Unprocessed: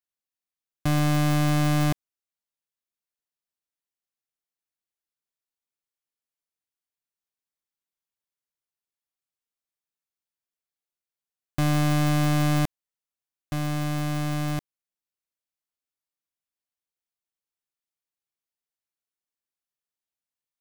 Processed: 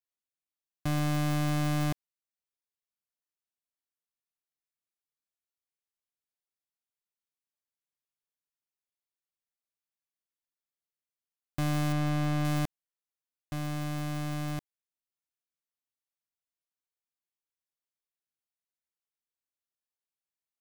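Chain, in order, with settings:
0:11.92–0:12.45: high-shelf EQ 5,300 Hz −9 dB
level −6.5 dB

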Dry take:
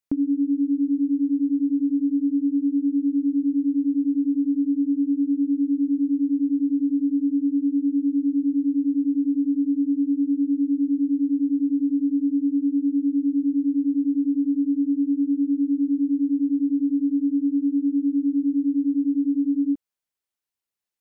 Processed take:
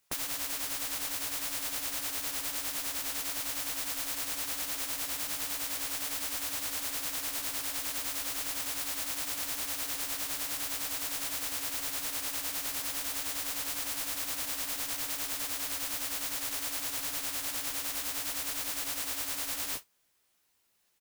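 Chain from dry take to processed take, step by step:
noise that follows the level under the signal 23 dB
double-tracking delay 16 ms −6 dB
every bin compressed towards the loudest bin 10 to 1
level −5 dB

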